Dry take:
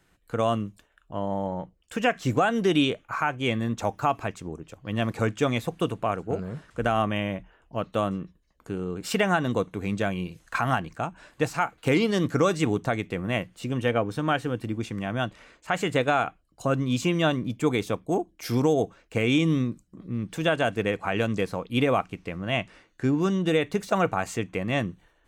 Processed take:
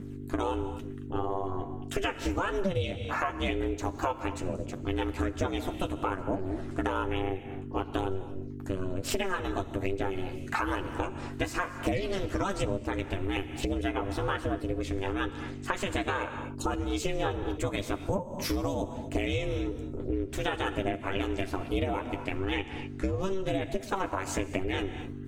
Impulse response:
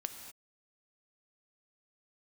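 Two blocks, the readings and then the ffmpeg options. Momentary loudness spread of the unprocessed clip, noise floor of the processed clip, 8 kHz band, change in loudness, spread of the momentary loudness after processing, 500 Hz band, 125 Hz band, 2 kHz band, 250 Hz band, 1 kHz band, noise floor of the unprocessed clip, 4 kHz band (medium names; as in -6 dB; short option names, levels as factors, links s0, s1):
11 LU, -41 dBFS, -2.0 dB, -5.5 dB, 5 LU, -5.5 dB, -5.5 dB, -5.5 dB, -6.0 dB, -5.5 dB, -65 dBFS, -5.0 dB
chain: -filter_complex "[0:a]aphaser=in_gain=1:out_gain=1:delay=1.3:decay=0.43:speed=1.1:type=triangular,aeval=exprs='val(0)+0.01*(sin(2*PI*50*n/s)+sin(2*PI*2*50*n/s)/2+sin(2*PI*3*50*n/s)/3+sin(2*PI*4*50*n/s)/4+sin(2*PI*5*50*n/s)/5)':c=same,aeval=exprs='val(0)*sin(2*PI*190*n/s)':c=same,asplit=2[s0][s1];[1:a]atrim=start_sample=2205,adelay=10[s2];[s1][s2]afir=irnorm=-1:irlink=0,volume=0.631[s3];[s0][s3]amix=inputs=2:normalize=0,acompressor=threshold=0.0251:ratio=6,volume=1.78"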